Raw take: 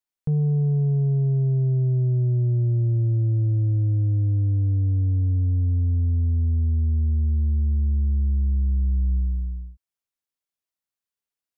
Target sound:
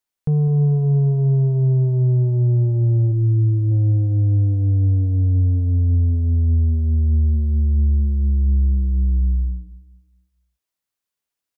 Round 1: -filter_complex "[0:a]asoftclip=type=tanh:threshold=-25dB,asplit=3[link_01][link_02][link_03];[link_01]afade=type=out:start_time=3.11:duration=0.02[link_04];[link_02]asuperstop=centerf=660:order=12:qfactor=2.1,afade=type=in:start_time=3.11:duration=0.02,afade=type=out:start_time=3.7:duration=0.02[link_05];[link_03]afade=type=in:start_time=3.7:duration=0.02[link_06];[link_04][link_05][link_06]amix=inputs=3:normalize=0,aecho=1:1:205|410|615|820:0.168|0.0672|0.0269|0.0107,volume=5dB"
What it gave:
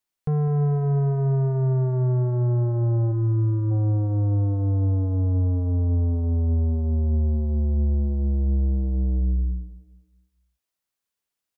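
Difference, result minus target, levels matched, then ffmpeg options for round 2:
soft clipping: distortion +15 dB
-filter_complex "[0:a]asoftclip=type=tanh:threshold=-14.5dB,asplit=3[link_01][link_02][link_03];[link_01]afade=type=out:start_time=3.11:duration=0.02[link_04];[link_02]asuperstop=centerf=660:order=12:qfactor=2.1,afade=type=in:start_time=3.11:duration=0.02,afade=type=out:start_time=3.7:duration=0.02[link_05];[link_03]afade=type=in:start_time=3.7:duration=0.02[link_06];[link_04][link_05][link_06]amix=inputs=3:normalize=0,aecho=1:1:205|410|615|820:0.168|0.0672|0.0269|0.0107,volume=5dB"

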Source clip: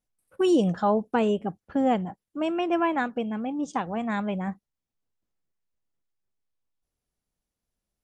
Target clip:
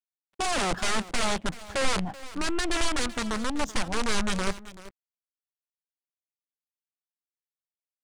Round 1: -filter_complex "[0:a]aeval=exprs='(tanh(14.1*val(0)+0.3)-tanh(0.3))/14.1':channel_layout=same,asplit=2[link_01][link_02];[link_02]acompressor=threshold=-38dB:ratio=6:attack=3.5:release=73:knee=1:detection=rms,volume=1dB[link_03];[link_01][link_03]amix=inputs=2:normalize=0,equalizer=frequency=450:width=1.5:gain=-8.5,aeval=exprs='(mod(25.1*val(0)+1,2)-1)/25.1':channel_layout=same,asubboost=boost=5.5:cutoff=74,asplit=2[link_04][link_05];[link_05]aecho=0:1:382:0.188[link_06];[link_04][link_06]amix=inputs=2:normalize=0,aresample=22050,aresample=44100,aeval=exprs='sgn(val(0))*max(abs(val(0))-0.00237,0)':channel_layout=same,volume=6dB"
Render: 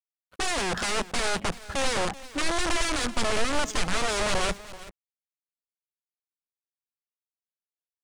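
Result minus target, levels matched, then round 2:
downward compressor: peak gain reduction +14 dB
-filter_complex "[0:a]aeval=exprs='(tanh(14.1*val(0)+0.3)-tanh(0.3))/14.1':channel_layout=same,equalizer=frequency=450:width=1.5:gain=-8.5,aeval=exprs='(mod(25.1*val(0)+1,2)-1)/25.1':channel_layout=same,asubboost=boost=5.5:cutoff=74,asplit=2[link_01][link_02];[link_02]aecho=0:1:382:0.188[link_03];[link_01][link_03]amix=inputs=2:normalize=0,aresample=22050,aresample=44100,aeval=exprs='sgn(val(0))*max(abs(val(0))-0.00237,0)':channel_layout=same,volume=6dB"

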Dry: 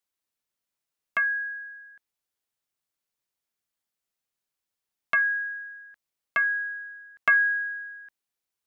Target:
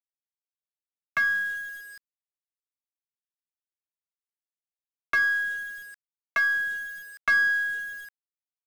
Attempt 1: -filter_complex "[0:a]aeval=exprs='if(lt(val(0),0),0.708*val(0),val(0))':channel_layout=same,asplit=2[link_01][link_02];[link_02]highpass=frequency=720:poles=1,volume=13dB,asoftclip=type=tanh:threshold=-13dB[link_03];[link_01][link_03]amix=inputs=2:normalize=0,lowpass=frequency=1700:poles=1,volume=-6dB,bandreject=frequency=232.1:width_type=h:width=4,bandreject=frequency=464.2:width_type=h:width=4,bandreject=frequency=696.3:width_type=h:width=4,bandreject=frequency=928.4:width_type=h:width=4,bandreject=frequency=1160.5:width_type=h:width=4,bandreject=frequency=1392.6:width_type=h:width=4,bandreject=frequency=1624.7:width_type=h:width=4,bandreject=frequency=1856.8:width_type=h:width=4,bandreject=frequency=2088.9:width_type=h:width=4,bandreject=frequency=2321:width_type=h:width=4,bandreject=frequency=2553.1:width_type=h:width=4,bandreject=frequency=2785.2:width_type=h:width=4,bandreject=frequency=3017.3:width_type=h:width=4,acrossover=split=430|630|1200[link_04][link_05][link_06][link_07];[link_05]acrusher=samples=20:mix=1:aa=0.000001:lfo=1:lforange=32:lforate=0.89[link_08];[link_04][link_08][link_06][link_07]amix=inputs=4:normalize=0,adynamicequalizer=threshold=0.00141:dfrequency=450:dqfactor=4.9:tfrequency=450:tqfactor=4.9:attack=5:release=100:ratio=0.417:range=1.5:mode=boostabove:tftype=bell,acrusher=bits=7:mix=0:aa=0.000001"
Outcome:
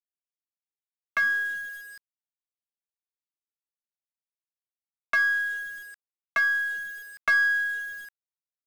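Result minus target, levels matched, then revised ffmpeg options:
sample-and-hold swept by an LFO: distortion −21 dB
-filter_complex "[0:a]aeval=exprs='if(lt(val(0),0),0.708*val(0),val(0))':channel_layout=same,asplit=2[link_01][link_02];[link_02]highpass=frequency=720:poles=1,volume=13dB,asoftclip=type=tanh:threshold=-13dB[link_03];[link_01][link_03]amix=inputs=2:normalize=0,lowpass=frequency=1700:poles=1,volume=-6dB,bandreject=frequency=232.1:width_type=h:width=4,bandreject=frequency=464.2:width_type=h:width=4,bandreject=frequency=696.3:width_type=h:width=4,bandreject=frequency=928.4:width_type=h:width=4,bandreject=frequency=1160.5:width_type=h:width=4,bandreject=frequency=1392.6:width_type=h:width=4,bandreject=frequency=1624.7:width_type=h:width=4,bandreject=frequency=1856.8:width_type=h:width=4,bandreject=frequency=2088.9:width_type=h:width=4,bandreject=frequency=2321:width_type=h:width=4,bandreject=frequency=2553.1:width_type=h:width=4,bandreject=frequency=2785.2:width_type=h:width=4,bandreject=frequency=3017.3:width_type=h:width=4,acrossover=split=430|630|1200[link_04][link_05][link_06][link_07];[link_05]acrusher=samples=68:mix=1:aa=0.000001:lfo=1:lforange=109:lforate=0.89[link_08];[link_04][link_08][link_06][link_07]amix=inputs=4:normalize=0,adynamicequalizer=threshold=0.00141:dfrequency=450:dqfactor=4.9:tfrequency=450:tqfactor=4.9:attack=5:release=100:ratio=0.417:range=1.5:mode=boostabove:tftype=bell,acrusher=bits=7:mix=0:aa=0.000001"

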